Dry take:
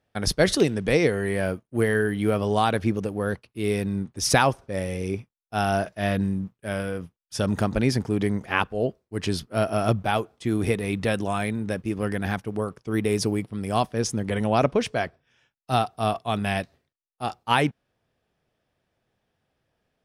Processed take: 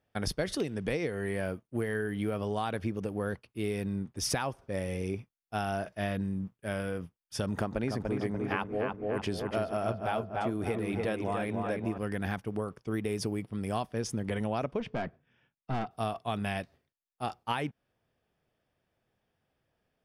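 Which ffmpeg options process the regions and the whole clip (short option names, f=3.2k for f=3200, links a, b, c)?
-filter_complex "[0:a]asettb=1/sr,asplit=3[a][b][c];[a]atrim=end=7.544[d];[b]atrim=start=7.54:end=11.98,asetpts=PTS-STARTPTS,afade=t=in:d=0.004:c=qsin,afade=t=out:st=4.436:d=0.004:c=qsin,equalizer=f=690:t=o:w=2.9:g=5.5,asplit=2[e][f];[f]adelay=292,lowpass=f=2.5k:p=1,volume=-4.5dB,asplit=2[g][h];[h]adelay=292,lowpass=f=2.5k:p=1,volume=0.49,asplit=2[i][j];[j]adelay=292,lowpass=f=2.5k:p=1,volume=0.49,asplit=2[k][l];[l]adelay=292,lowpass=f=2.5k:p=1,volume=0.49,asplit=2[m][n];[n]adelay=292,lowpass=f=2.5k:p=1,volume=0.49,asplit=2[o][p];[p]adelay=292,lowpass=f=2.5k:p=1,volume=0.49[q];[e][g][i][k][m][o][q]amix=inputs=7:normalize=0,atrim=end_sample=195804[r];[c]atrim=start=11.976[s];[d][r]acrossfade=d=0.004:c1=hsin:c2=qsin[t];[t][s]acrossfade=d=0.004:c1=qsin:c2=hsin,asettb=1/sr,asplit=3[u][v][w];[u]atrim=end=14.804[x];[v]atrim=start=14.8:end=15.91,asetpts=PTS-STARTPTS,afade=t=in:d=0.004:c=qsin,afade=t=out:st=1.106:d=0.004:c=qsin,lowpass=3.1k,equalizer=f=190:w=0.95:g=9,aeval=exprs='(tanh(11.2*val(0)+0.4)-tanh(0.4))/11.2':c=same[y];[w]atrim=start=15.906[z];[x][y]acrossfade=d=0.004:c1=hsin:c2=qsin[aa];[aa][z]acrossfade=d=0.004:c1=qsin:c2=hsin,equalizer=f=7.1k:w=1.5:g=-4,bandreject=f=4k:w=14,acompressor=threshold=-25dB:ratio=6,volume=-3.5dB"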